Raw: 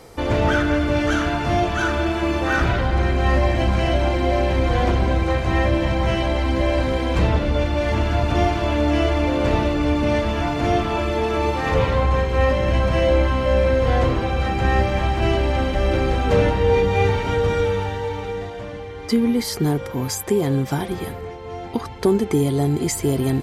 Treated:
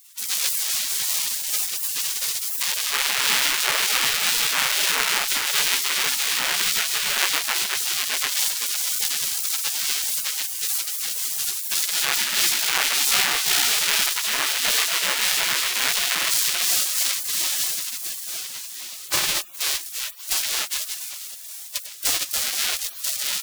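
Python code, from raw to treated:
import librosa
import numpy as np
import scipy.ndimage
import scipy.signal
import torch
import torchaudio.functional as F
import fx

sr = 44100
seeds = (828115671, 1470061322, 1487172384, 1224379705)

y = fx.halfwave_hold(x, sr)
y = fx.echo_diffused(y, sr, ms=580, feedback_pct=52, wet_db=-12.5)
y = fx.spec_gate(y, sr, threshold_db=-30, keep='weak')
y = y * 10.0 ** (6.0 / 20.0)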